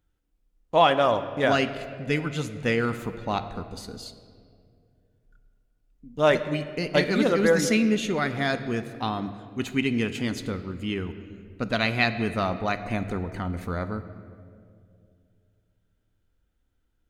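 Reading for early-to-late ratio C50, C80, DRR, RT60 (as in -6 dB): 11.5 dB, 12.5 dB, 10.0 dB, 2.3 s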